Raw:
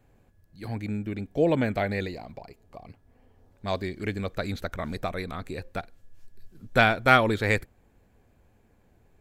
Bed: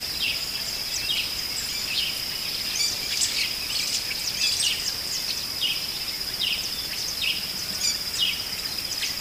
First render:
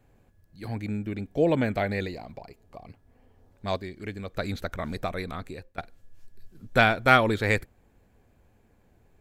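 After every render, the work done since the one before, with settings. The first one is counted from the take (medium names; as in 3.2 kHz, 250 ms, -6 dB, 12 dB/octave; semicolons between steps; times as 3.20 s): 3.77–4.35 s: gain -5.5 dB; 5.37–5.78 s: fade out, to -20 dB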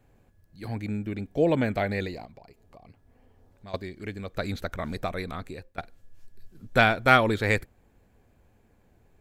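2.25–3.74 s: compression 2:1, threshold -51 dBFS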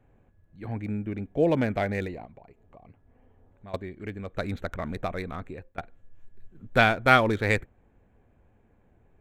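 local Wiener filter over 9 samples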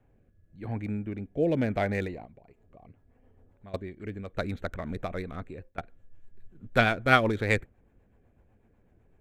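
rotary cabinet horn 0.9 Hz, later 8 Hz, at 2.24 s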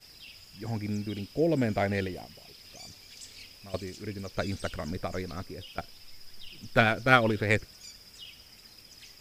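add bed -23 dB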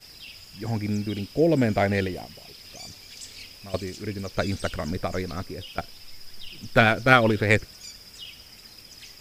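trim +5.5 dB; peak limiter -1 dBFS, peak gain reduction 3 dB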